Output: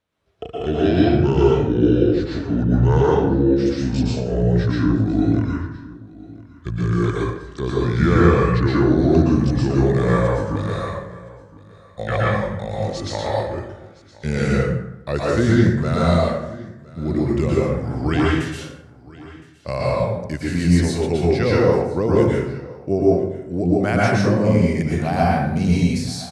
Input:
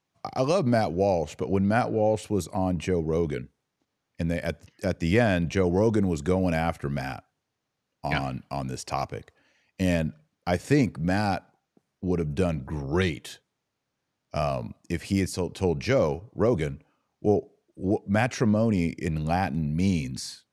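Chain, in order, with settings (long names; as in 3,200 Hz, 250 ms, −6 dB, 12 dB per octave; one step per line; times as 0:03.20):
gliding playback speed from 58% → 98%
on a send: single-tap delay 1,015 ms −21 dB
on the sum: dense smooth reverb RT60 0.9 s, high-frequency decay 0.55×, pre-delay 105 ms, DRR −5.5 dB
level +1 dB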